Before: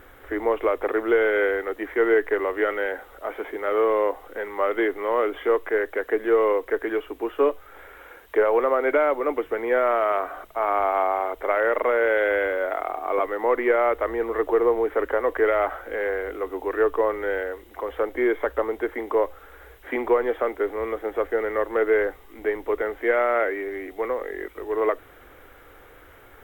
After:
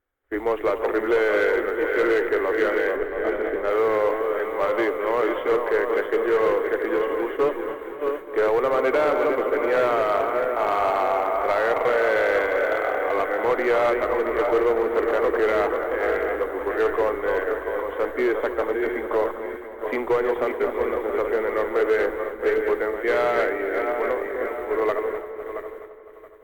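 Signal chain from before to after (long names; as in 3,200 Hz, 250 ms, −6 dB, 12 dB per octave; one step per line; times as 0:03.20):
feedback delay that plays each chunk backwards 337 ms, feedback 71%, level −6 dB
downward expander −26 dBFS
0:02.96–0:03.70: spectral tilt −2 dB per octave
in parallel at −5.5 dB: wave folding −17.5 dBFS
on the sum: notch filter 5,200 Hz, Q 10
delay with a low-pass on its return 255 ms, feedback 54%, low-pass 2,300 Hz, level −12 dB
level −3.5 dB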